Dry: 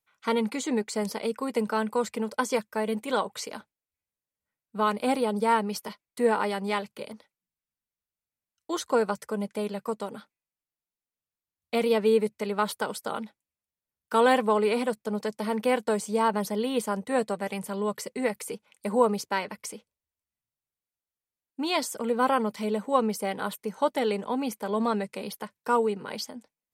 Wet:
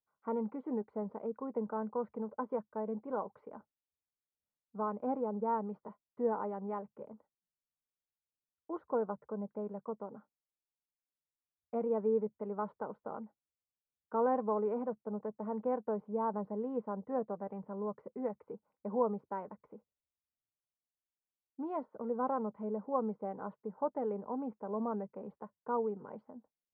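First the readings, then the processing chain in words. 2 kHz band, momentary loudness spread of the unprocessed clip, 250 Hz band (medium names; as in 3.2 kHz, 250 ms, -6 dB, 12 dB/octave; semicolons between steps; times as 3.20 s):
-23.0 dB, 13 LU, -9.0 dB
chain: low-pass 1.1 kHz 24 dB/octave; trim -9 dB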